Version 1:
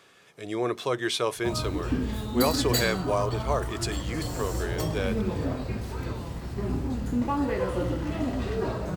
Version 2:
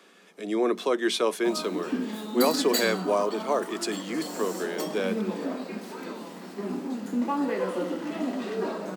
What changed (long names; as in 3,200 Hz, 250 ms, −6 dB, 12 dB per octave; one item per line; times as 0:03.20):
speech: remove high-pass filter 450 Hz 6 dB per octave
master: add Butterworth high-pass 180 Hz 96 dB per octave